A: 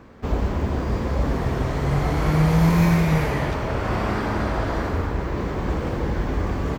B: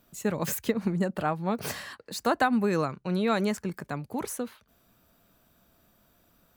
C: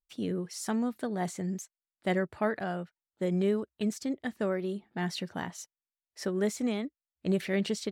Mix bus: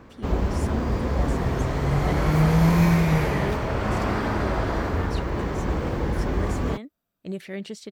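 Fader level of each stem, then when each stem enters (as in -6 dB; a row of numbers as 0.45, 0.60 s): -1.0, -18.0, -4.5 dB; 0.00, 1.85, 0.00 s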